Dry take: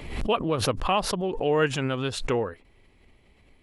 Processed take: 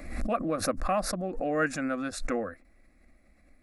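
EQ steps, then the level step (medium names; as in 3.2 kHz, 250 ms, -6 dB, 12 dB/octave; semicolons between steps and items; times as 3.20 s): static phaser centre 620 Hz, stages 8; 0.0 dB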